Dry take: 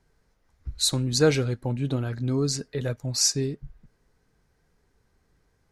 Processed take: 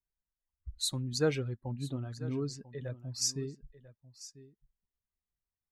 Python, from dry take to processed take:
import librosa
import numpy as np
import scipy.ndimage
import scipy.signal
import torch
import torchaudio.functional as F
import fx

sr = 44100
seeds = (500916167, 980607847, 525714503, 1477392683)

y = fx.bin_expand(x, sr, power=1.5)
y = fx.high_shelf(y, sr, hz=6800.0, db=-10.0, at=(1.39, 3.22))
y = y + 10.0 ** (-17.0 / 20.0) * np.pad(y, (int(994 * sr / 1000.0), 0))[:len(y)]
y = F.gain(torch.from_numpy(y), -8.0).numpy()